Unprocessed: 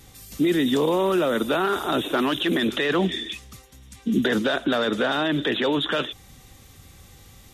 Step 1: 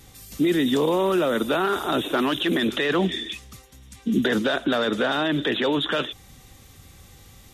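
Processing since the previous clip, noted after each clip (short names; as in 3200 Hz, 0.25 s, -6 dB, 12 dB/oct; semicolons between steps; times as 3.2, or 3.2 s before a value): nothing audible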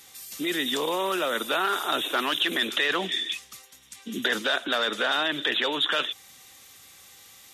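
HPF 1500 Hz 6 dB/oct; gain +3.5 dB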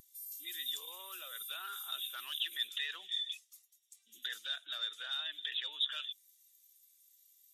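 differentiator; spectral expander 1.5:1; gain -3.5 dB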